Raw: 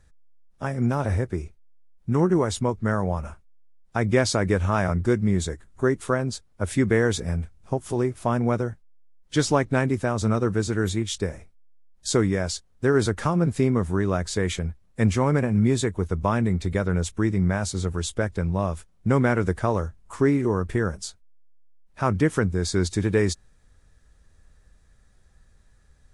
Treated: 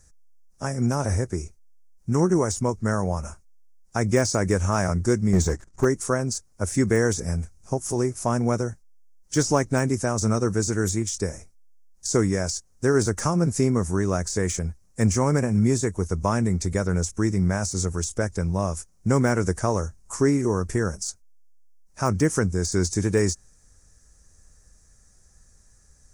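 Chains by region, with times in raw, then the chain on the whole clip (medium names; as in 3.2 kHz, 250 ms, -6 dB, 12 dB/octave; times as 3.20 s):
5.33–5.85 s: distance through air 87 m + waveshaping leveller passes 2
whole clip: de-esser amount 80%; resonant high shelf 4.6 kHz +9.5 dB, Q 3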